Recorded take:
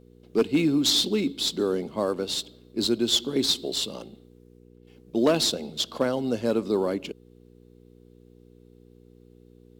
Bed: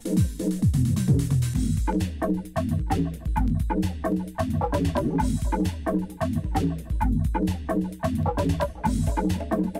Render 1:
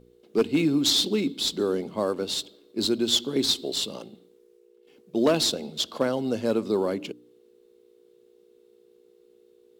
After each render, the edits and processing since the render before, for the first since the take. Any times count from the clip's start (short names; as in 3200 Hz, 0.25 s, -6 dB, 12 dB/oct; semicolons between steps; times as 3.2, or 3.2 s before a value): de-hum 60 Hz, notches 5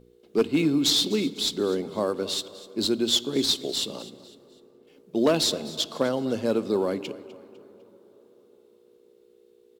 feedback echo 0.251 s, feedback 40%, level -18 dB; plate-style reverb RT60 4.6 s, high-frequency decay 0.35×, DRR 19 dB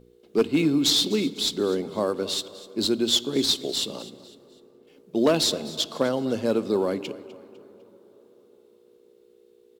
gain +1 dB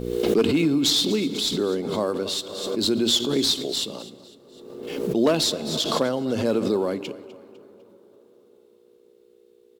backwards sustainer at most 42 dB/s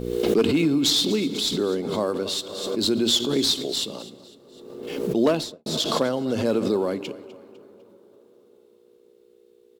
5.25–5.66 studio fade out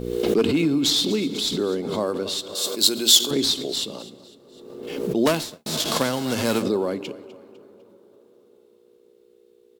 2.55–3.31 RIAA curve recording; 5.25–6.61 spectral whitening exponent 0.6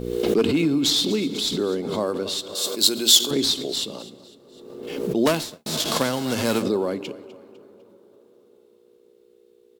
nothing audible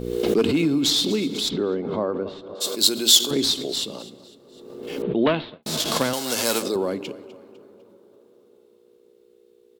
1.48–2.6 LPF 2900 Hz -> 1100 Hz; 5.02–5.63 steep low-pass 3700 Hz 48 dB/oct; 6.13–6.76 tone controls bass -13 dB, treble +9 dB